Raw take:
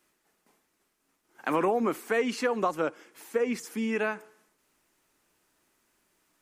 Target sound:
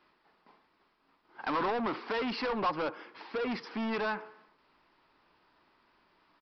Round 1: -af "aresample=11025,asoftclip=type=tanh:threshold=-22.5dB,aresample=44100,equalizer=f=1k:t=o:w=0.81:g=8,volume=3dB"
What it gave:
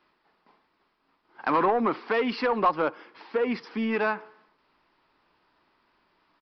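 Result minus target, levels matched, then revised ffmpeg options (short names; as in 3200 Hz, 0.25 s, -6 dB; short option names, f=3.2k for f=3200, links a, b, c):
soft clip: distortion -9 dB
-af "aresample=11025,asoftclip=type=tanh:threshold=-34.5dB,aresample=44100,equalizer=f=1k:t=o:w=0.81:g=8,volume=3dB"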